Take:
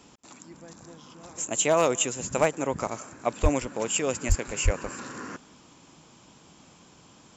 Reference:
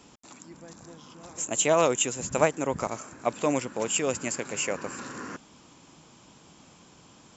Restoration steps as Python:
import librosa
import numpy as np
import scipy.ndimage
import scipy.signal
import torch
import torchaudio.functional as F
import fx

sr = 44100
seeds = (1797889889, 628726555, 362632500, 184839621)

y = fx.fix_declip(x, sr, threshold_db=-11.0)
y = fx.fix_deplosive(y, sr, at_s=(3.42, 4.28, 4.64))
y = fx.fix_echo_inverse(y, sr, delay_ms=183, level_db=-23.5)